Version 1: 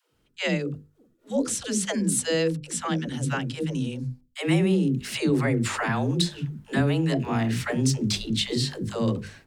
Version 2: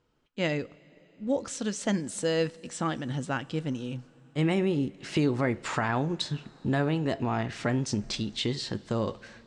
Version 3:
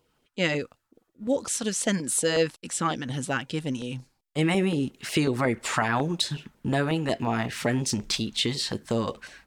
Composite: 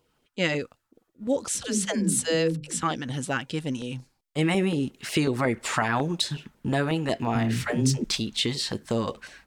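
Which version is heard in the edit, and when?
3
0:01.55–0:02.83: punch in from 1
0:07.35–0:08.04: punch in from 1
not used: 2

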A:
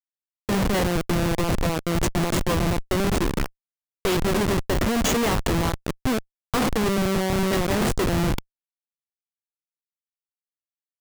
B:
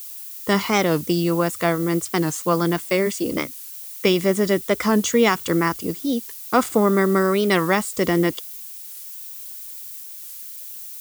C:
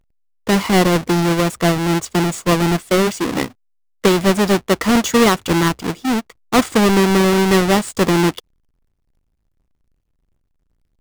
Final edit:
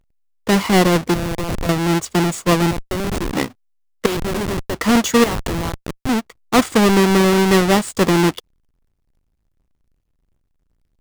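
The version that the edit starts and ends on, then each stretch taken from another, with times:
C
0:01.14–0:01.69: punch in from A
0:02.71–0:03.33: punch in from A
0:04.06–0:04.74: punch in from A
0:05.24–0:06.09: punch in from A
not used: B

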